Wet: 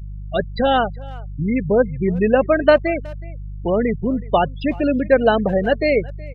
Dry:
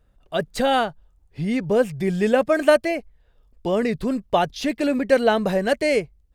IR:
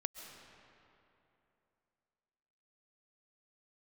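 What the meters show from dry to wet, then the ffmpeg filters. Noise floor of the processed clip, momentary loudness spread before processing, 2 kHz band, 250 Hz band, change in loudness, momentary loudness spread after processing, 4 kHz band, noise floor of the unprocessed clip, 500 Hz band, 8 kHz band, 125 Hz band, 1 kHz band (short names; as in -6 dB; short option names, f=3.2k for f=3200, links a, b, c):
-32 dBFS, 10 LU, +2.0 dB, +3.0 dB, +3.0 dB, 11 LU, -0.5 dB, -60 dBFS, +3.0 dB, under -30 dB, +5.5 dB, +3.0 dB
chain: -filter_complex "[0:a]aeval=exprs='val(0)+0.0251*(sin(2*PI*50*n/s)+sin(2*PI*2*50*n/s)/2+sin(2*PI*3*50*n/s)/3+sin(2*PI*4*50*n/s)/4+sin(2*PI*5*50*n/s)/5)':c=same,afftfilt=real='re*gte(hypot(re,im),0.0891)':imag='im*gte(hypot(re,im),0.0891)':win_size=1024:overlap=0.75,asplit=2[a][b];[b]adelay=370,highpass=300,lowpass=3.4k,asoftclip=type=hard:threshold=-13.5dB,volume=-21dB[c];[a][c]amix=inputs=2:normalize=0,volume=3dB"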